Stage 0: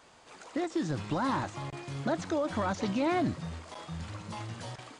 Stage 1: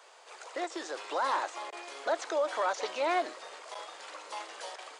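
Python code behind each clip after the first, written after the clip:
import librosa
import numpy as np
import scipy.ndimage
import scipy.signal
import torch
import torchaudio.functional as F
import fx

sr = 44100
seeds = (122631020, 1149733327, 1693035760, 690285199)

y = scipy.signal.sosfilt(scipy.signal.butter(6, 420.0, 'highpass', fs=sr, output='sos'), x)
y = y * librosa.db_to_amplitude(2.5)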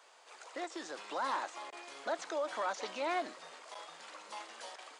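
y = fx.low_shelf_res(x, sr, hz=270.0, db=11.5, q=1.5)
y = y * librosa.db_to_amplitude(-4.5)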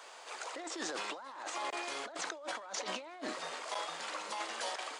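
y = fx.over_compress(x, sr, threshold_db=-46.0, ratio=-1.0)
y = y * librosa.db_to_amplitude(4.5)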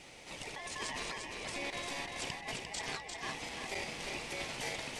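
y = x * np.sin(2.0 * np.pi * 1400.0 * np.arange(len(x)) / sr)
y = fx.echo_feedback(y, sr, ms=349, feedback_pct=39, wet_db=-5.0)
y = y * librosa.db_to_amplitude(1.5)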